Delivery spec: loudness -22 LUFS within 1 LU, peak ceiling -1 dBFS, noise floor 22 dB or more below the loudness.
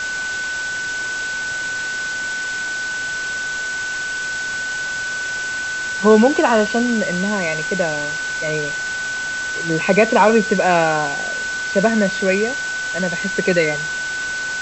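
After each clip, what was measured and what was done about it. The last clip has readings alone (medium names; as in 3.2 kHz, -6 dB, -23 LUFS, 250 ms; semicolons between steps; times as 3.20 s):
steady tone 1.5 kHz; tone level -22 dBFS; noise floor -25 dBFS; noise floor target -42 dBFS; loudness -19.5 LUFS; peak level -1.5 dBFS; loudness target -22.0 LUFS
-> band-stop 1.5 kHz, Q 30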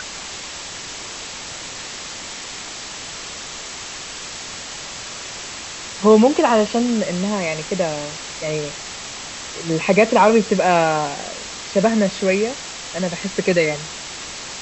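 steady tone not found; noise floor -33 dBFS; noise floor target -43 dBFS
-> noise print and reduce 10 dB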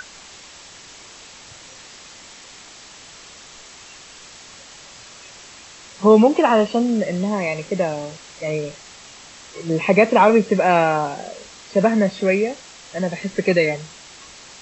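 noise floor -43 dBFS; loudness -18.5 LUFS; peak level -2.0 dBFS; loudness target -22.0 LUFS
-> trim -3.5 dB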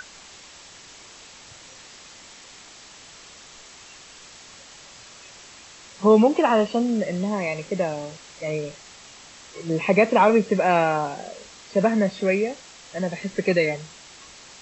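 loudness -22.0 LUFS; peak level -5.5 dBFS; noise floor -46 dBFS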